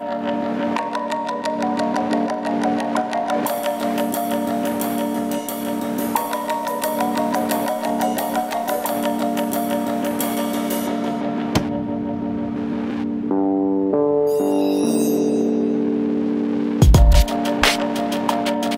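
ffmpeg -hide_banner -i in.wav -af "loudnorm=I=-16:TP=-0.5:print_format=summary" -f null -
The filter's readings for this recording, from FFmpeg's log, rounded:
Input Integrated:    -20.3 LUFS
Input True Peak:      -1.6 dBTP
Input LRA:             4.5 LU
Input Threshold:     -30.3 LUFS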